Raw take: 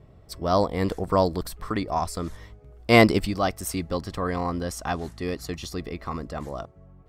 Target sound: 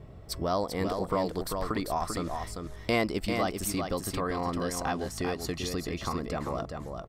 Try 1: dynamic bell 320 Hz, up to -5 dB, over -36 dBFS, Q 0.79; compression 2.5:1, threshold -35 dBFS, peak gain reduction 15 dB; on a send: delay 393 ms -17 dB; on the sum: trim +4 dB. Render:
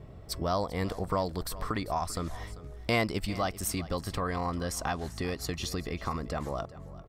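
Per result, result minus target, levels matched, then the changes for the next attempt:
echo-to-direct -11.5 dB; 125 Hz band +3.0 dB
change: delay 393 ms -5.5 dB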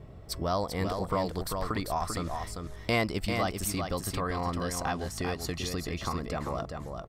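125 Hz band +2.5 dB
change: dynamic bell 89 Hz, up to -5 dB, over -36 dBFS, Q 0.79

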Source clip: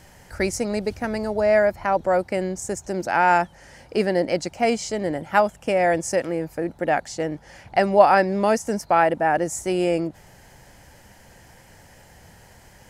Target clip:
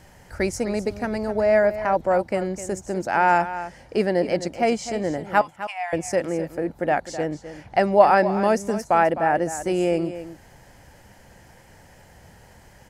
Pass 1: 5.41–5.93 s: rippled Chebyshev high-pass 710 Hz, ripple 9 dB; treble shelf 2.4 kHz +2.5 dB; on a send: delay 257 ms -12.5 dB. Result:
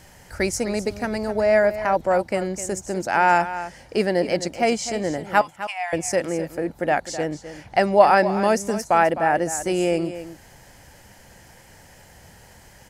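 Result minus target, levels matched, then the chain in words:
4 kHz band +4.0 dB
5.41–5.93 s: rippled Chebyshev high-pass 710 Hz, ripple 9 dB; treble shelf 2.4 kHz -4 dB; on a send: delay 257 ms -12.5 dB

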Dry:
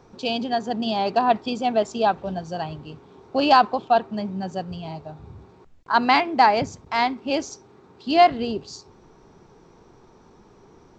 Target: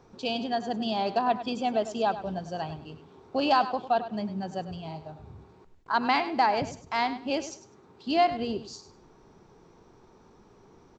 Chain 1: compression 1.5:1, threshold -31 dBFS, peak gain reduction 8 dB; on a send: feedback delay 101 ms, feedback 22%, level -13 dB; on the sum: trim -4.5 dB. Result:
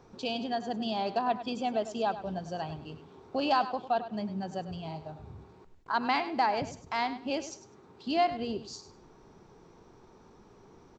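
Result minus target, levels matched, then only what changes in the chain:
compression: peak gain reduction +3.5 dB
change: compression 1.5:1, threshold -20 dBFS, peak gain reduction 4 dB

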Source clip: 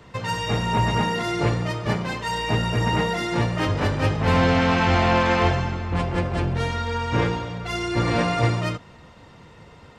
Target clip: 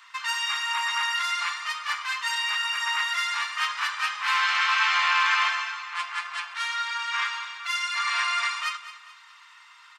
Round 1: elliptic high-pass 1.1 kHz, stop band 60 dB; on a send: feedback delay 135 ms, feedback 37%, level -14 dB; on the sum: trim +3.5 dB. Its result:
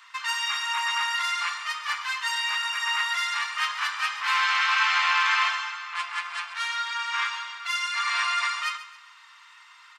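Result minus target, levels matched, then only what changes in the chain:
echo 77 ms early
change: feedback delay 212 ms, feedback 37%, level -14 dB

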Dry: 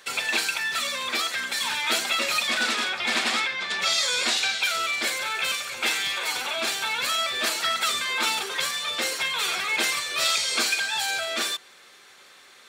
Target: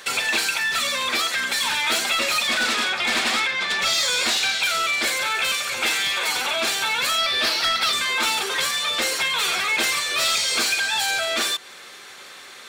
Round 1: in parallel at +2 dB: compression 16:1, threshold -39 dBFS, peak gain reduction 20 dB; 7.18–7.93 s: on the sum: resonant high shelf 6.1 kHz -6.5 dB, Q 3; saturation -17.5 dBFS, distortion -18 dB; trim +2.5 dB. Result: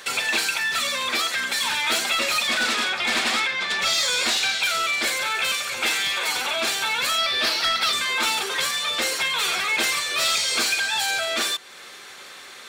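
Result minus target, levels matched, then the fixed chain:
compression: peak gain reduction +6 dB
in parallel at +2 dB: compression 16:1, threshold -32.5 dBFS, peak gain reduction 14 dB; 7.18–7.93 s: on the sum: resonant high shelf 6.1 kHz -6.5 dB, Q 3; saturation -17.5 dBFS, distortion -16 dB; trim +2.5 dB

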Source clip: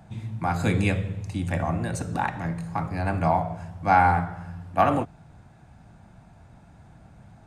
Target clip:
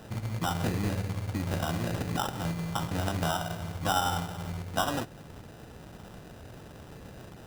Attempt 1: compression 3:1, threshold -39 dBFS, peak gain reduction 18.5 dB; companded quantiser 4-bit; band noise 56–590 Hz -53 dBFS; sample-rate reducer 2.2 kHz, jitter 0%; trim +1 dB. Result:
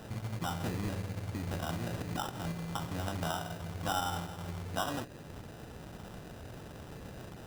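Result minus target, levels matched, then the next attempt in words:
compression: peak gain reduction +5.5 dB
compression 3:1, threshold -30.5 dBFS, peak gain reduction 13 dB; companded quantiser 4-bit; band noise 56–590 Hz -53 dBFS; sample-rate reducer 2.2 kHz, jitter 0%; trim +1 dB

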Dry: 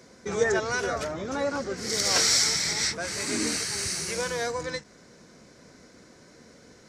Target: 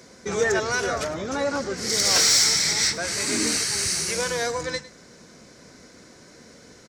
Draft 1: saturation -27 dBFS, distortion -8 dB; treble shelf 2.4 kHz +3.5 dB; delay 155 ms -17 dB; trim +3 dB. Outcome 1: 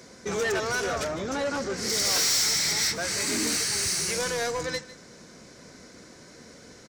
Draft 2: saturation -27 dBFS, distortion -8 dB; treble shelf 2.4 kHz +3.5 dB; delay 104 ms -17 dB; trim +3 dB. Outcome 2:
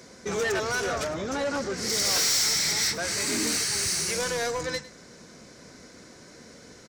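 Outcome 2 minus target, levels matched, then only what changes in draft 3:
saturation: distortion +10 dB
change: saturation -16.5 dBFS, distortion -19 dB

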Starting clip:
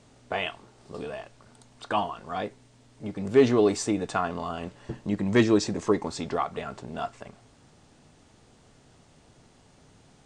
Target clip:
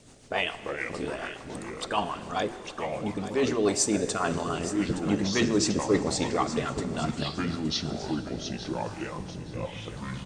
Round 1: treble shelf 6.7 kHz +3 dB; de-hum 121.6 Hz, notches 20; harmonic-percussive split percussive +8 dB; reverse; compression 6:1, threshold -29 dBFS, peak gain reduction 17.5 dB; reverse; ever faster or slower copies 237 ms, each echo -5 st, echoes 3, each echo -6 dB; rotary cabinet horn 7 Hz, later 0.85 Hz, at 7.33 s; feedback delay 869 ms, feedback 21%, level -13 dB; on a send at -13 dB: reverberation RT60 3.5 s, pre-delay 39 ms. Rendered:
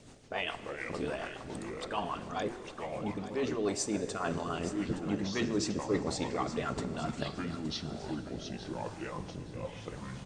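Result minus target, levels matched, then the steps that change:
compression: peak gain reduction +7.5 dB; 8 kHz band -3.0 dB
change: treble shelf 6.7 kHz +11 dB; change: compression 6:1, threshold -20 dBFS, peak gain reduction 10 dB

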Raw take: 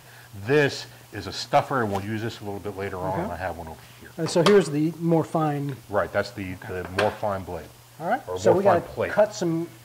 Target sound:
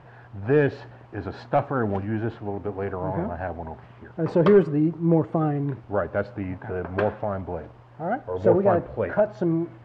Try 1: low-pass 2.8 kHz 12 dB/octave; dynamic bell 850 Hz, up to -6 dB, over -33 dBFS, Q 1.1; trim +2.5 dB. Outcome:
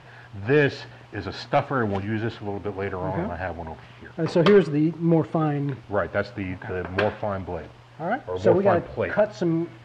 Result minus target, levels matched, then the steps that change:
2 kHz band +5.0 dB
change: low-pass 1.3 kHz 12 dB/octave

